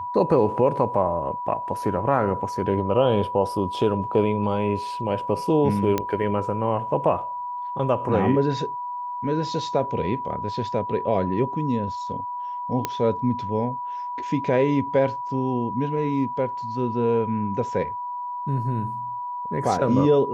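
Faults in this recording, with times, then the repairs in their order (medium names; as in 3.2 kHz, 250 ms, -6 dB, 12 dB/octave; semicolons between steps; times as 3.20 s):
whine 980 Hz -28 dBFS
5.98 s: pop -9 dBFS
12.85 s: pop -9 dBFS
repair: de-click; band-stop 980 Hz, Q 30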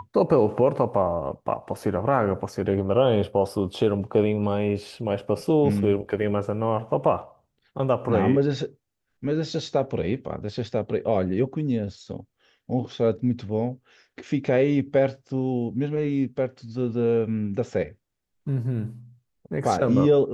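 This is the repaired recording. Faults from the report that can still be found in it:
nothing left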